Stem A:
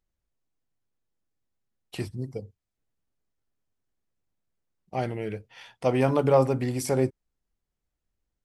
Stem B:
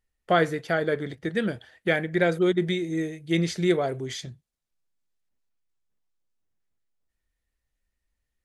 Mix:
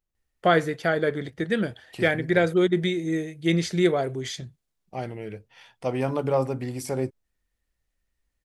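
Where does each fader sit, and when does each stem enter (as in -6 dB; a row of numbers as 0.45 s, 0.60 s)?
-3.5 dB, +1.5 dB; 0.00 s, 0.15 s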